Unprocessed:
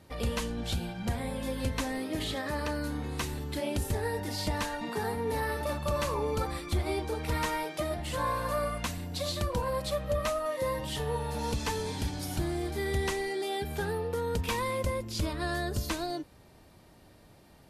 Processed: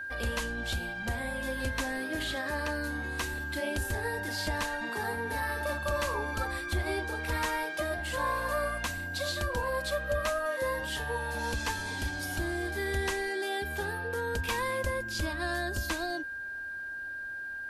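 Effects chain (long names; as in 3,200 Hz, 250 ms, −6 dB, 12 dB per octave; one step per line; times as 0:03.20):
steady tone 1,600 Hz −36 dBFS
parametric band 150 Hz −11 dB 0.93 octaves
notch filter 440 Hz, Q 12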